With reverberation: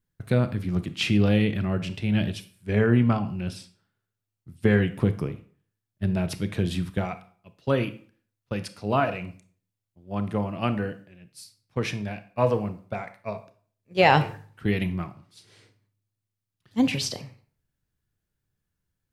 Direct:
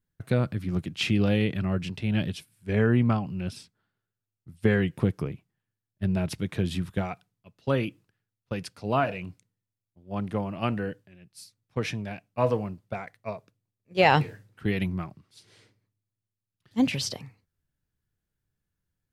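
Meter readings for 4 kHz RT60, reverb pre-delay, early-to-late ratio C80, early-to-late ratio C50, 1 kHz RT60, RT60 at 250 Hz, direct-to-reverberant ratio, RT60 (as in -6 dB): 0.35 s, 26 ms, 18.5 dB, 14.0 dB, 0.45 s, 0.45 s, 11.0 dB, 0.45 s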